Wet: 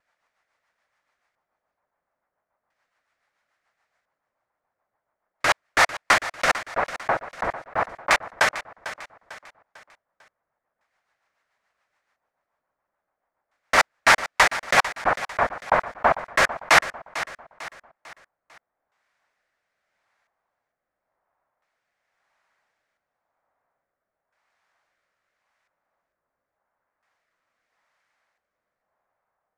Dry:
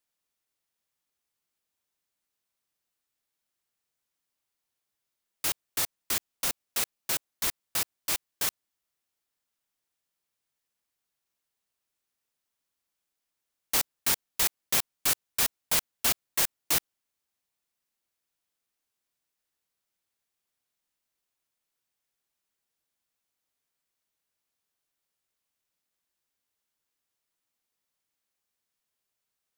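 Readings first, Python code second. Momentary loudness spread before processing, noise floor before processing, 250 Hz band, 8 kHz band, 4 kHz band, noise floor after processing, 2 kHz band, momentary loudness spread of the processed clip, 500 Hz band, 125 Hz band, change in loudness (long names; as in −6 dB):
6 LU, −85 dBFS, +7.5 dB, −3.0 dB, +4.0 dB, −84 dBFS, +17.0 dB, 18 LU, +17.0 dB, +7.0 dB, +6.0 dB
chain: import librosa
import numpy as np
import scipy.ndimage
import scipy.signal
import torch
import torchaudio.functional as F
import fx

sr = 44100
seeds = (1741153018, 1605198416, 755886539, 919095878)

p1 = fx.vibrato(x, sr, rate_hz=0.77, depth_cents=20.0)
p2 = fx.level_steps(p1, sr, step_db=16)
p3 = p1 + (p2 * librosa.db_to_amplitude(-3.0))
p4 = fx.rotary_switch(p3, sr, hz=7.0, then_hz=0.9, switch_at_s=15.33)
p5 = fx.band_shelf(p4, sr, hz=1100.0, db=15.0, octaves=2.3)
p6 = fx.filter_lfo_lowpass(p5, sr, shape='square', hz=0.37, low_hz=950.0, high_hz=5500.0, q=0.76)
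p7 = p6 + fx.echo_feedback(p6, sr, ms=448, feedback_pct=42, wet_db=-14.0, dry=0)
y = p7 * librosa.db_to_amplitude(6.5)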